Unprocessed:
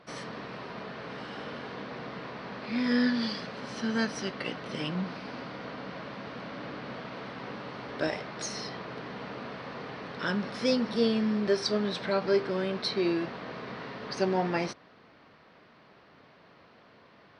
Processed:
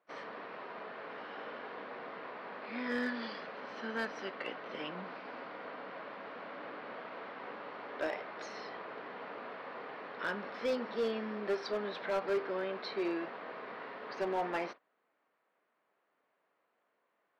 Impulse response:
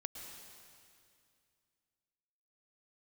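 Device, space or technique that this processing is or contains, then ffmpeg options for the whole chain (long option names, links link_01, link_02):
walkie-talkie: -af "highpass=410,lowpass=2400,asoftclip=type=hard:threshold=-25dB,agate=range=-17dB:threshold=-45dB:ratio=16:detection=peak,volume=-2.5dB"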